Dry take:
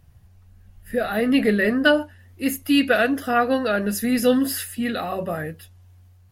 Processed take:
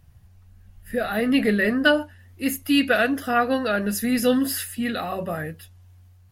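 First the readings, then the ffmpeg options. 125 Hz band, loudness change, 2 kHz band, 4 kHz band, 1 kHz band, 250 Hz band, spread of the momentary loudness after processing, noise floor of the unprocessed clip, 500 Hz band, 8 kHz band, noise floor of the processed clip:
-0.5 dB, -1.0 dB, -0.5 dB, 0.0 dB, -1.0 dB, -1.5 dB, 10 LU, -52 dBFS, -2.0 dB, 0.0 dB, -52 dBFS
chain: -af "equalizer=f=440:t=o:w=1.6:g=-2.5"

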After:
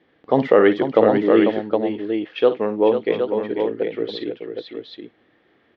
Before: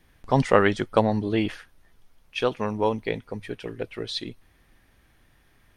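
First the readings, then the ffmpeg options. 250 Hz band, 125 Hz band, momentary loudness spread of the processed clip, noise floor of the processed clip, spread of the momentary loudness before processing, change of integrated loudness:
+7.0 dB, -4.5 dB, 17 LU, -61 dBFS, 15 LU, +6.5 dB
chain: -af "highpass=240,equalizer=f=320:t=q:w=4:g=6,equalizer=f=470:t=q:w=4:g=6,equalizer=f=990:t=q:w=4:g=-6,equalizer=f=1500:t=q:w=4:g=-5,equalizer=f=2500:t=q:w=4:g=-7,lowpass=f=3300:w=0.5412,lowpass=f=3300:w=1.3066,aecho=1:1:53|495|765:0.237|0.376|0.447,alimiter=level_in=1.88:limit=0.891:release=50:level=0:latency=1,volume=0.891"

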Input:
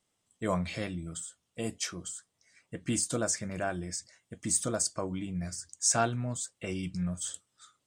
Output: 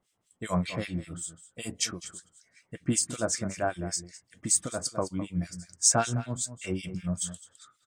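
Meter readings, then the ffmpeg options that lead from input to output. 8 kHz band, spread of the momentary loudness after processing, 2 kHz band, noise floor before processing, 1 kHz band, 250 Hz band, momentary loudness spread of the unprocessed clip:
+3.5 dB, 16 LU, +1.0 dB, -80 dBFS, +1.5 dB, +1.5 dB, 13 LU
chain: -filter_complex "[0:a]asplit=2[s0][s1];[s1]adelay=209.9,volume=0.224,highshelf=f=4000:g=-4.72[s2];[s0][s2]amix=inputs=2:normalize=0,acrossover=split=1700[s3][s4];[s3]aeval=exprs='val(0)*(1-1/2+1/2*cos(2*PI*5.2*n/s))':c=same[s5];[s4]aeval=exprs='val(0)*(1-1/2-1/2*cos(2*PI*5.2*n/s))':c=same[s6];[s5][s6]amix=inputs=2:normalize=0,acontrast=54"

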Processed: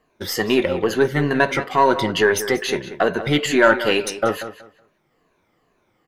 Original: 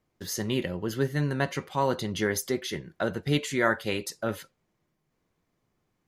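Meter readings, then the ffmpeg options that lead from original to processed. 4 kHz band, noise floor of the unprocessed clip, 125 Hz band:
+10.0 dB, -77 dBFS, +3.0 dB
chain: -filter_complex "[0:a]afftfilt=real='re*pow(10,11/40*sin(2*PI*(1.5*log(max(b,1)*sr/1024/100)/log(2)-(-2.3)*(pts-256)/sr)))':imag='im*pow(10,11/40*sin(2*PI*(1.5*log(max(b,1)*sr/1024/100)/log(2)-(-2.3)*(pts-256)/sr)))':win_size=1024:overlap=0.75,asplit=2[s0][s1];[s1]alimiter=limit=0.112:level=0:latency=1:release=130,volume=1.19[s2];[s0][s2]amix=inputs=2:normalize=0,asoftclip=type=tanh:threshold=0.447,aeval=exprs='0.398*(cos(1*acos(clip(val(0)/0.398,-1,1)))-cos(1*PI/2))+0.0158*(cos(4*acos(clip(val(0)/0.398,-1,1)))-cos(4*PI/2))+0.00355*(cos(8*acos(clip(val(0)/0.398,-1,1)))-cos(8*PI/2))':c=same,bass=f=250:g=-10,treble=f=4000:g=-9,asplit=2[s3][s4];[s4]adelay=186,lowpass=f=4700:p=1,volume=0.237,asplit=2[s5][s6];[s6]adelay=186,lowpass=f=4700:p=1,volume=0.22,asplit=2[s7][s8];[s8]adelay=186,lowpass=f=4700:p=1,volume=0.22[s9];[s5][s7][s9]amix=inputs=3:normalize=0[s10];[s3][s10]amix=inputs=2:normalize=0,volume=2.11"

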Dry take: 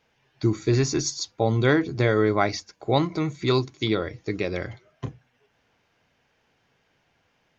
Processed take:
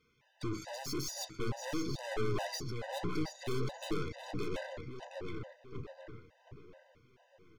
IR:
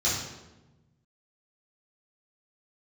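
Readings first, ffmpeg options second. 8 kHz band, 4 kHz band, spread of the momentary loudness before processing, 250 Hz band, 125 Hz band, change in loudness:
no reading, -11.5 dB, 13 LU, -14.5 dB, -15.0 dB, -15.5 dB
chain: -filter_complex "[0:a]aeval=exprs='(tanh(56.2*val(0)+0.6)-tanh(0.6))/56.2':c=same,asplit=2[s0][s1];[s1]adelay=723,lowpass=f=3600:p=1,volume=0.631,asplit=2[s2][s3];[s3]adelay=723,lowpass=f=3600:p=1,volume=0.45,asplit=2[s4][s5];[s5]adelay=723,lowpass=f=3600:p=1,volume=0.45,asplit=2[s6][s7];[s7]adelay=723,lowpass=f=3600:p=1,volume=0.45,asplit=2[s8][s9];[s9]adelay=723,lowpass=f=3600:p=1,volume=0.45,asplit=2[s10][s11];[s11]adelay=723,lowpass=f=3600:p=1,volume=0.45[s12];[s0][s2][s4][s6][s8][s10][s12]amix=inputs=7:normalize=0,afftfilt=real='re*gt(sin(2*PI*2.3*pts/sr)*(1-2*mod(floor(b*sr/1024/510),2)),0)':imag='im*gt(sin(2*PI*2.3*pts/sr)*(1-2*mod(floor(b*sr/1024/510),2)),0)':win_size=1024:overlap=0.75,volume=1.12"

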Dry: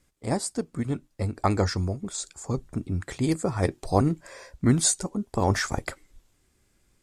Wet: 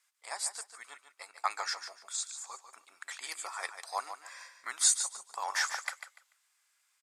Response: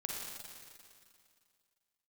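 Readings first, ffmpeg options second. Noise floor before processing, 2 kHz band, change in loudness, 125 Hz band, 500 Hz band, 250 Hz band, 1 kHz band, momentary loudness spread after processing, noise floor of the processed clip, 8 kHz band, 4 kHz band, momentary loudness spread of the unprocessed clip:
-68 dBFS, -1.5 dB, -6.5 dB, under -40 dB, -21.0 dB, under -40 dB, -6.0 dB, 22 LU, -75 dBFS, -1.5 dB, -1.5 dB, 10 LU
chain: -filter_complex "[0:a]highpass=f=970:w=0.5412,highpass=f=970:w=1.3066,asplit=2[s0][s1];[s1]aecho=0:1:146|292|438:0.335|0.0737|0.0162[s2];[s0][s2]amix=inputs=2:normalize=0,volume=0.794"

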